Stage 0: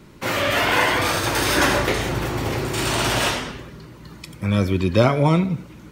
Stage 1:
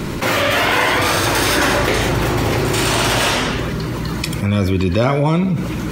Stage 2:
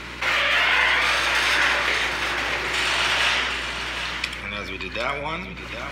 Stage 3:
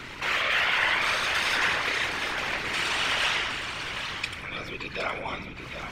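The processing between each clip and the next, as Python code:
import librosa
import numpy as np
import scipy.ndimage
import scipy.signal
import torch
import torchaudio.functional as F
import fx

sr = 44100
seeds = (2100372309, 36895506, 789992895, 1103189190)

y1 = fx.env_flatten(x, sr, amount_pct=70)
y1 = F.gain(torch.from_numpy(y1), -1.5).numpy()
y2 = fx.bandpass_q(y1, sr, hz=2300.0, q=1.1)
y2 = fx.add_hum(y2, sr, base_hz=60, snr_db=19)
y2 = y2 + 10.0 ** (-8.5 / 20.0) * np.pad(y2, (int(765 * sr / 1000.0), 0))[:len(y2)]
y3 = fx.whisperise(y2, sr, seeds[0])
y3 = F.gain(torch.from_numpy(y3), -5.0).numpy()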